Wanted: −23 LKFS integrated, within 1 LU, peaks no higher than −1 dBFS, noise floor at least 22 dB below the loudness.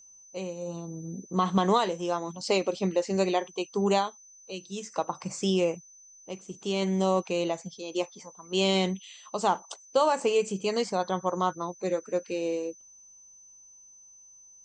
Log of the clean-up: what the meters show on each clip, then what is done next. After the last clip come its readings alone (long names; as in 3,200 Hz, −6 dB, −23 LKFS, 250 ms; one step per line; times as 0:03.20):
interfering tone 6,100 Hz; level of the tone −51 dBFS; integrated loudness −29.0 LKFS; sample peak −11.0 dBFS; target loudness −23.0 LKFS
→ notch filter 6,100 Hz, Q 30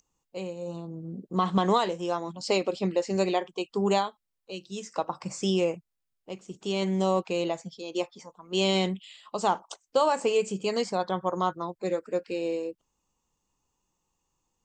interfering tone none found; integrated loudness −29.0 LKFS; sample peak −11.0 dBFS; target loudness −23.0 LKFS
→ level +6 dB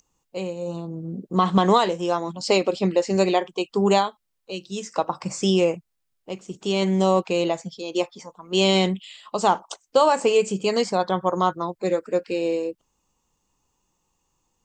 integrated loudness −23.0 LKFS; sample peak −5.0 dBFS; background noise floor −75 dBFS